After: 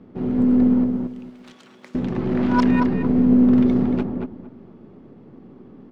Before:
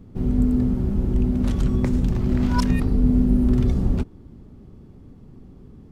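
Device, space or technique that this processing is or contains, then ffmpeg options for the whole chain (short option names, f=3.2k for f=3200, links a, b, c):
crystal radio: -filter_complex "[0:a]highpass=240,lowpass=2.8k,aeval=exprs='if(lt(val(0),0),0.708*val(0),val(0))':c=same,asettb=1/sr,asplit=3[a][b][c];[a]atrim=end=0.844[d];[b]atrim=start=0.84:end=1.95,asetpts=PTS-STARTPTS,afade=t=in:d=0.004:c=qsin,afade=t=out:st=1.106:d=0.004:c=qsin,aderivative[e];[c]atrim=start=1.946[f];[d][e]acrossfade=d=0.004:c1=hsin:c2=qsin[g];[g][f]acrossfade=d=0.004:c1=qsin:c2=hsin,asplit=2[h][i];[i]adelay=229,lowpass=f=1.6k:p=1,volume=-3dB,asplit=2[j][k];[k]adelay=229,lowpass=f=1.6k:p=1,volume=0.23,asplit=2[l][m];[m]adelay=229,lowpass=f=1.6k:p=1,volume=0.23[n];[h][j][l][n]amix=inputs=4:normalize=0,volume=6.5dB"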